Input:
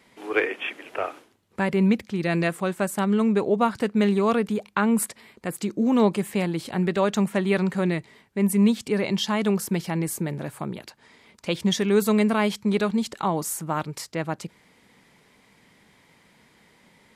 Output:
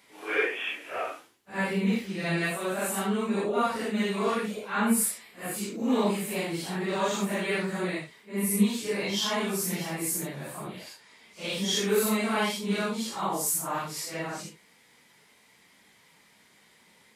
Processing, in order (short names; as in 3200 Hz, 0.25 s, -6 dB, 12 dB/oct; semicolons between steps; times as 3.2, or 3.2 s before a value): phase scrambler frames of 0.2 s; tilt +2 dB/oct; gain -3 dB